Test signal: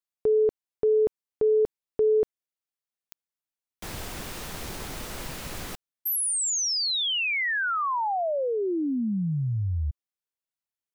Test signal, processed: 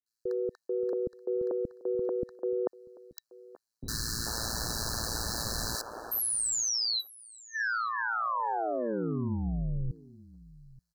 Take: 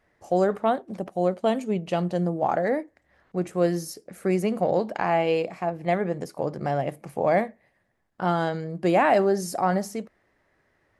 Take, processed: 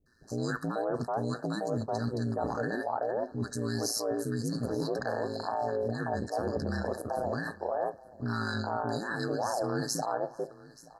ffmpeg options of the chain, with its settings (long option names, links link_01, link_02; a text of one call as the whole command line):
ffmpeg -i in.wav -filter_complex "[0:a]equalizer=frequency=3500:width=0.45:gain=10,acrossover=split=350|1300[link_01][link_02][link_03];[link_03]adelay=60[link_04];[link_02]adelay=440[link_05];[link_01][link_05][link_04]amix=inputs=3:normalize=0,areverse,acompressor=threshold=-31dB:ratio=12:attack=15:release=64:knee=1:detection=rms,areverse,aeval=exprs='val(0)*sin(2*PI*57*n/s)':channel_layout=same,afftfilt=real='re*(1-between(b*sr/4096,1800,3900))':imag='im*(1-between(b*sr/4096,1800,3900))':win_size=4096:overlap=0.75,asplit=2[link_06][link_07];[link_07]aecho=0:1:879:0.0891[link_08];[link_06][link_08]amix=inputs=2:normalize=0,volume=4.5dB" out.wav